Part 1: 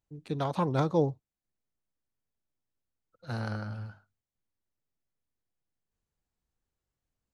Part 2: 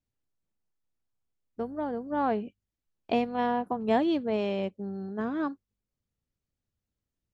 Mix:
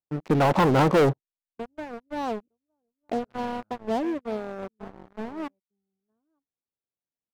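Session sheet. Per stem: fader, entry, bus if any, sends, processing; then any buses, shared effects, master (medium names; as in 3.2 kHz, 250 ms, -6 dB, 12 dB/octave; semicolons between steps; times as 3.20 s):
+0.5 dB, 0.00 s, no send, no echo send, high-pass 190 Hz 12 dB/octave; auto duck -23 dB, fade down 0.50 s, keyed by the second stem
-19.0 dB, 0.00 s, no send, echo send -17 dB, reverb removal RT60 0.53 s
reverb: none
echo: delay 912 ms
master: low-pass 1.1 kHz 12 dB/octave; waveshaping leveller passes 5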